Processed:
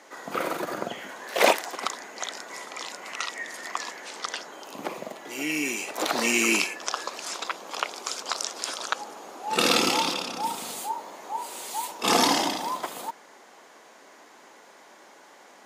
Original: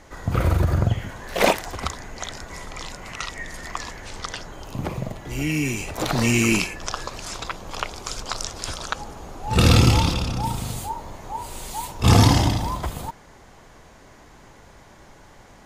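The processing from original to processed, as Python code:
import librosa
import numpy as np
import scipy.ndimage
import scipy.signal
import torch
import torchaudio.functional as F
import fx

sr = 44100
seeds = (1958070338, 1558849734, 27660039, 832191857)

y = scipy.signal.sosfilt(scipy.signal.bessel(6, 380.0, 'highpass', norm='mag', fs=sr, output='sos'), x)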